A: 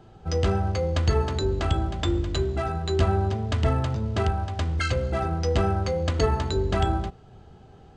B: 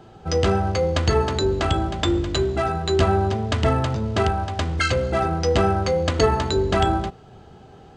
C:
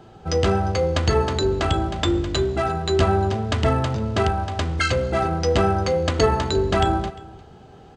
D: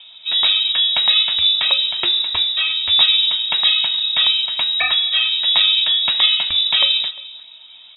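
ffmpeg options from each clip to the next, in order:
-af "lowshelf=f=100:g=-10,volume=6.5dB"
-af "aecho=1:1:351:0.0841"
-af "aphaser=in_gain=1:out_gain=1:delay=1.9:decay=0.23:speed=0.69:type=triangular,lowpass=f=3.3k:t=q:w=0.5098,lowpass=f=3.3k:t=q:w=0.6013,lowpass=f=3.3k:t=q:w=0.9,lowpass=f=3.3k:t=q:w=2.563,afreqshift=-3900,volume=3dB"

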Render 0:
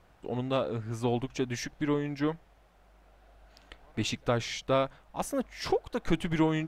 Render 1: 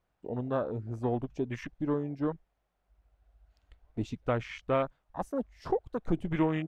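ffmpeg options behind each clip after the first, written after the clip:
-af "afwtdn=0.0158,volume=-1.5dB"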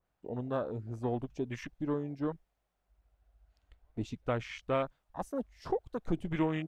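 -af "adynamicequalizer=threshold=0.00398:dfrequency=2700:dqfactor=0.7:tfrequency=2700:tqfactor=0.7:attack=5:release=100:ratio=0.375:range=2.5:mode=boostabove:tftype=highshelf,volume=-3dB"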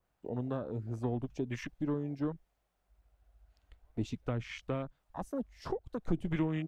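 -filter_complex "[0:a]acrossover=split=300[a][b];[b]acompressor=threshold=-39dB:ratio=10[c];[a][c]amix=inputs=2:normalize=0,volume=2dB"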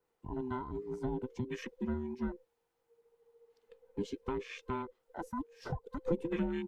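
-af "afftfilt=real='real(if(between(b,1,1008),(2*floor((b-1)/24)+1)*24-b,b),0)':imag='imag(if(between(b,1,1008),(2*floor((b-1)/24)+1)*24-b,b),0)*if(between(b,1,1008),-1,1)':win_size=2048:overlap=0.75,volume=-2dB"

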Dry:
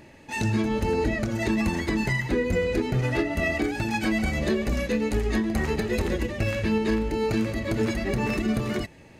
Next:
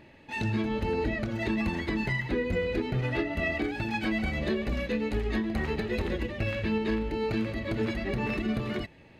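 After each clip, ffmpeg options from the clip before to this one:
-af "highshelf=f=4.9k:t=q:w=1.5:g=-8.5,volume=-4.5dB"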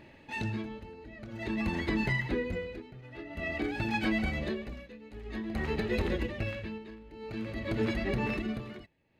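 -af "tremolo=f=0.5:d=0.9"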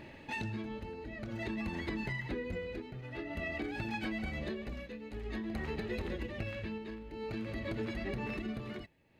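-af "acompressor=threshold=-40dB:ratio=4,volume=3.5dB"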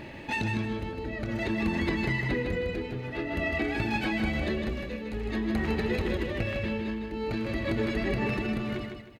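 -af "aecho=1:1:156|312|468|624:0.531|0.17|0.0544|0.0174,volume=8dB"

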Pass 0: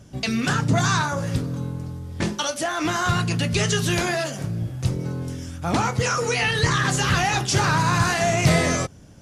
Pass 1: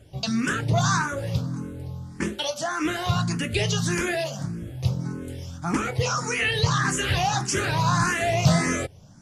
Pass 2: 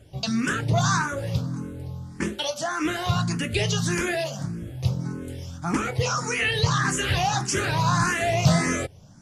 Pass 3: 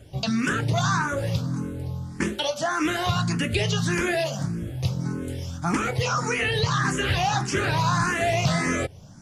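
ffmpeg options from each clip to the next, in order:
-filter_complex "[0:a]asplit=2[a][b];[b]afreqshift=1.7[c];[a][c]amix=inputs=2:normalize=1"
-af anull
-filter_complex "[0:a]acrossover=split=1200|3900[a][b][c];[a]acompressor=threshold=-25dB:ratio=4[d];[b]acompressor=threshold=-31dB:ratio=4[e];[c]acompressor=threshold=-41dB:ratio=4[f];[d][e][f]amix=inputs=3:normalize=0,volume=3.5dB"

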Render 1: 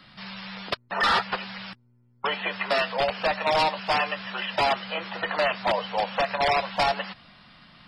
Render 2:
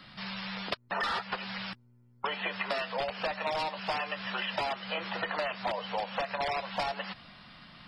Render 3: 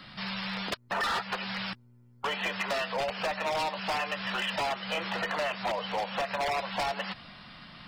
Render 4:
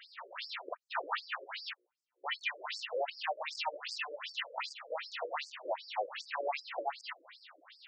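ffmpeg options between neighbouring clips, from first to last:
-af "acompressor=threshold=-30dB:ratio=6"
-af "asoftclip=type=hard:threshold=-29.5dB,volume=3.5dB"
-af "afftfilt=real='re*between(b*sr/1024,410*pow(6400/410,0.5+0.5*sin(2*PI*2.6*pts/sr))/1.41,410*pow(6400/410,0.5+0.5*sin(2*PI*2.6*pts/sr))*1.41)':imag='im*between(b*sr/1024,410*pow(6400/410,0.5+0.5*sin(2*PI*2.6*pts/sr))/1.41,410*pow(6400/410,0.5+0.5*sin(2*PI*2.6*pts/sr))*1.41)':win_size=1024:overlap=0.75"

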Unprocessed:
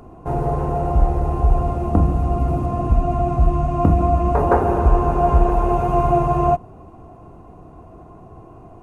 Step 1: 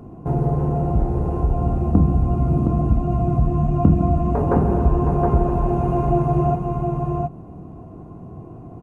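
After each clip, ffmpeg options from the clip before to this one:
-filter_complex "[0:a]aecho=1:1:716:0.531,asplit=2[a][b];[b]acompressor=threshold=-23dB:ratio=6,volume=-1.5dB[c];[a][c]amix=inputs=2:normalize=0,equalizer=f=170:t=o:w=2.6:g=14,volume=-11.5dB"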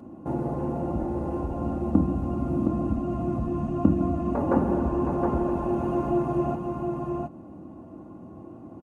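-af "highpass=120,aecho=1:1:3.5:0.61,volume=-4dB"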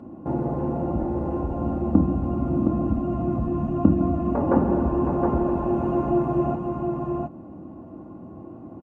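-af "lowpass=f=2.1k:p=1,volume=3dB"

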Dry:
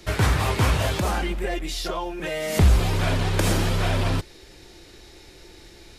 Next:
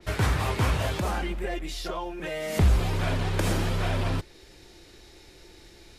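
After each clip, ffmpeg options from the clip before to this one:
-af "adynamicequalizer=threshold=0.00631:dfrequency=3100:dqfactor=0.7:tfrequency=3100:tqfactor=0.7:attack=5:release=100:ratio=0.375:range=1.5:mode=cutabove:tftype=highshelf,volume=-4dB"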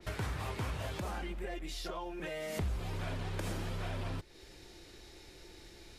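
-af "acompressor=threshold=-36dB:ratio=2.5,volume=-3dB"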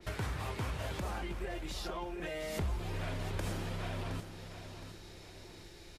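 -af "aecho=1:1:717|1434|2151|2868:0.316|0.133|0.0558|0.0234"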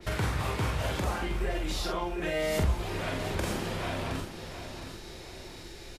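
-filter_complex "[0:a]asplit=2[a][b];[b]adelay=45,volume=-4dB[c];[a][c]amix=inputs=2:normalize=0,volume=6.5dB"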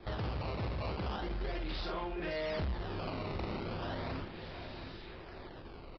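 -af "acrusher=samples=15:mix=1:aa=0.000001:lfo=1:lforange=24:lforate=0.37,aresample=11025,asoftclip=type=tanh:threshold=-28dB,aresample=44100,volume=-3.5dB"

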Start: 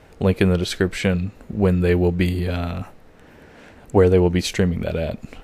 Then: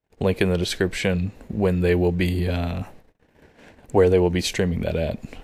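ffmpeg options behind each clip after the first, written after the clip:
-filter_complex "[0:a]agate=range=-37dB:threshold=-44dB:ratio=16:detection=peak,equalizer=f=1.3k:t=o:w=0.27:g=-7,acrossover=split=350|4000[a][b][c];[a]alimiter=limit=-17.5dB:level=0:latency=1[d];[d][b][c]amix=inputs=3:normalize=0"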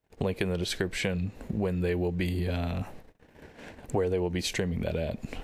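-af "acompressor=threshold=-32dB:ratio=3,volume=2.5dB"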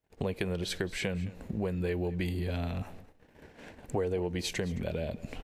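-af "aecho=1:1:216:0.119,volume=-3.5dB"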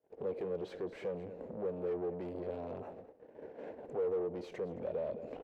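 -af "alimiter=level_in=2dB:limit=-24dB:level=0:latency=1:release=54,volume=-2dB,asoftclip=type=tanh:threshold=-39.5dB,bandpass=f=490:t=q:w=2.3:csg=0,volume=10.5dB"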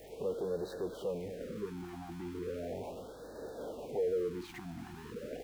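-af "aeval=exprs='val(0)+0.5*0.00447*sgn(val(0))':c=same,aeval=exprs='val(0)+0.000708*(sin(2*PI*50*n/s)+sin(2*PI*2*50*n/s)/2+sin(2*PI*3*50*n/s)/3+sin(2*PI*4*50*n/s)/4+sin(2*PI*5*50*n/s)/5)':c=same,afftfilt=real='re*(1-between(b*sr/1024,480*pow(2600/480,0.5+0.5*sin(2*PI*0.37*pts/sr))/1.41,480*pow(2600/480,0.5+0.5*sin(2*PI*0.37*pts/sr))*1.41))':imag='im*(1-between(b*sr/1024,480*pow(2600/480,0.5+0.5*sin(2*PI*0.37*pts/sr))/1.41,480*pow(2600/480,0.5+0.5*sin(2*PI*0.37*pts/sr))*1.41))':win_size=1024:overlap=0.75,volume=1dB"

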